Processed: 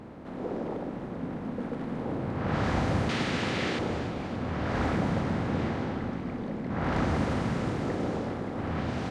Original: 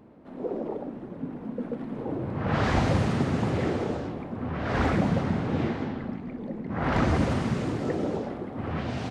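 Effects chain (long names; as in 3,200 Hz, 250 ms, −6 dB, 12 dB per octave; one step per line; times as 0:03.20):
compressor on every frequency bin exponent 0.6
0:03.09–0:03.79: meter weighting curve D
delay that swaps between a low-pass and a high-pass 143 ms, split 850 Hz, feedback 85%, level −13 dB
level −6.5 dB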